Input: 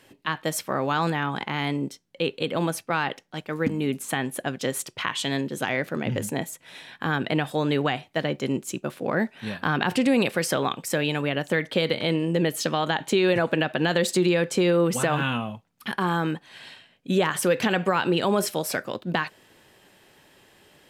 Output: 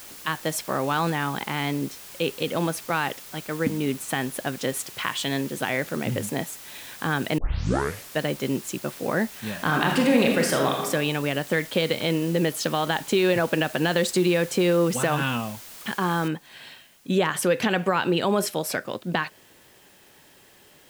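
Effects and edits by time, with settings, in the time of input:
7.38 s: tape start 0.83 s
9.52–10.86 s: reverb throw, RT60 1 s, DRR 1 dB
16.28 s: noise floor step -43 dB -58 dB

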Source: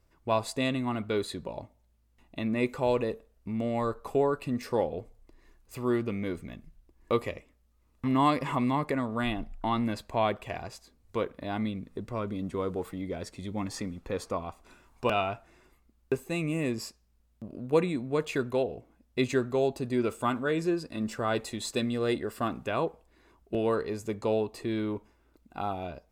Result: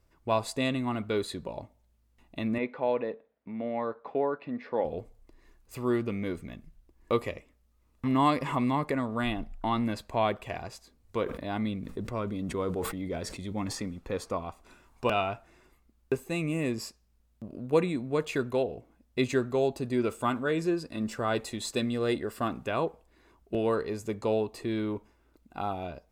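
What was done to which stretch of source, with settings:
2.58–4.85 s: cabinet simulation 250–3100 Hz, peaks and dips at 370 Hz -6 dB, 1.2 kHz -5 dB, 2.8 kHz -7 dB
11.23–13.77 s: decay stretcher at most 54 dB/s

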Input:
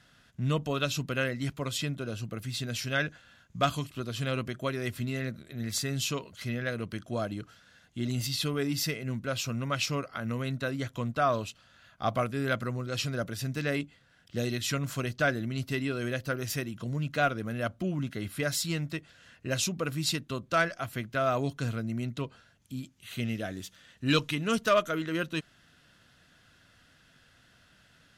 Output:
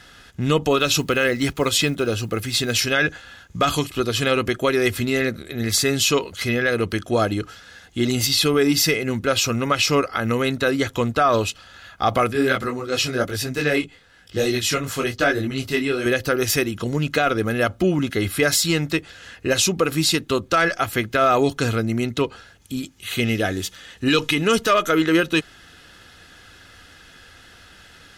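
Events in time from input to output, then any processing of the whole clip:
0.81–2.84 s: block-companded coder 7-bit
12.33–16.06 s: detune thickener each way 34 cents
whole clip: peaking EQ 130 Hz -11 dB 0.35 oct; comb 2.4 ms, depth 40%; loudness maximiser +22 dB; trim -7.5 dB

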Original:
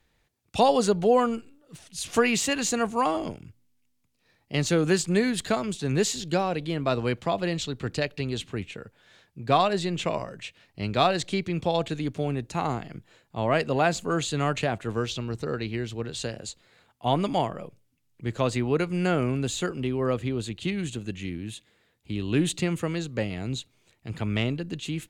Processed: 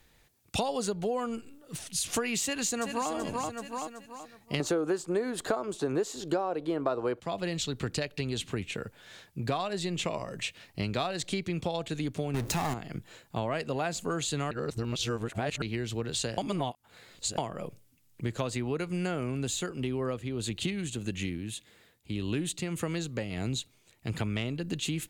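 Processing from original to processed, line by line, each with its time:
2.43–3.11 s: echo throw 380 ms, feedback 35%, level -8 dB
4.60–7.20 s: high-order bell 650 Hz +14 dB 2.7 oct
9.83–10.46 s: band-stop 1.5 kHz, Q 9.1
12.34–12.74 s: power-law waveshaper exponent 0.5
14.51–15.62 s: reverse
16.38–17.38 s: reverse
19.44–24.17 s: tremolo 1.7 Hz, depth 56%
whole clip: treble shelf 6.8 kHz +8.5 dB; compression 6:1, threshold -34 dBFS; trim +5 dB

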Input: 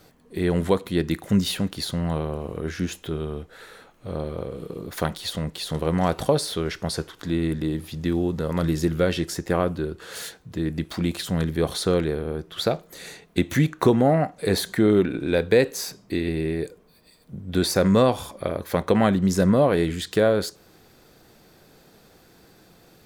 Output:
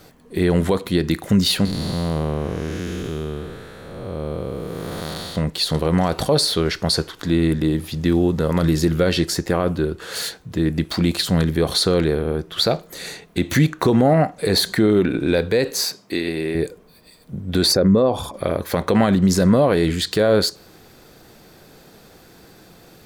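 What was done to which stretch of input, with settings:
1.65–5.36 s: spectral blur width 463 ms
15.85–16.55 s: high-pass 440 Hz 6 dB/octave
17.72–18.34 s: resonances exaggerated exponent 1.5
whole clip: dynamic bell 4.4 kHz, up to +8 dB, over -50 dBFS, Q 5; peak limiter -13.5 dBFS; trim +6.5 dB

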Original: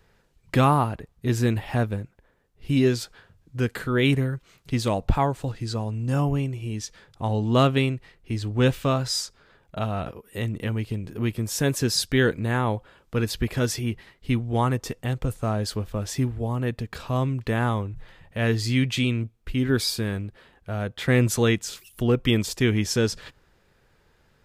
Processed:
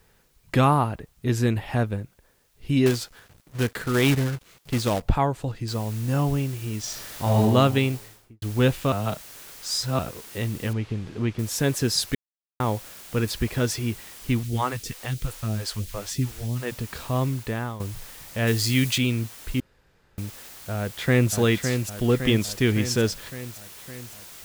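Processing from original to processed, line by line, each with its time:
2.86–5.02 s: companded quantiser 4-bit
5.68 s: noise floor step -67 dB -44 dB
6.80–7.41 s: reverb throw, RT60 1.2 s, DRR -4.5 dB
7.93–8.42 s: studio fade out
8.92–9.99 s: reverse
10.73–11.39 s: Bessel low-pass 3.1 kHz
12.15–12.60 s: mute
14.43–16.72 s: phase shifter stages 2, 3 Hz, lowest notch 110–1100 Hz
17.29–17.80 s: fade out, to -13 dB
18.47–18.98 s: treble shelf 3.8 kHz +9 dB
19.60–20.18 s: room tone
20.76–21.33 s: echo throw 560 ms, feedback 65%, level -6 dB

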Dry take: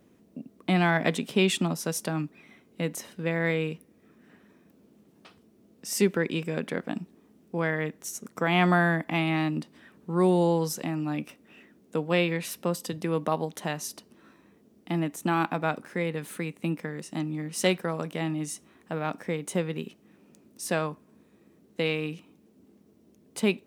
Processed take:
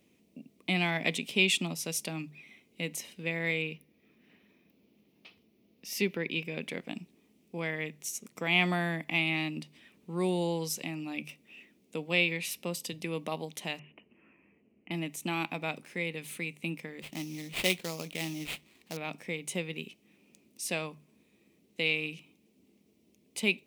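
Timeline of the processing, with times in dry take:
3.62–6.61 s: peaking EQ 8.1 kHz -14 dB 0.64 oct
13.79–14.91 s: steep low-pass 2.9 kHz 96 dB/octave
17.02–18.97 s: sample-rate reducer 5.9 kHz, jitter 20%
whole clip: resonant high shelf 1.9 kHz +6.5 dB, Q 3; hum notches 50/100/150 Hz; trim -7.5 dB

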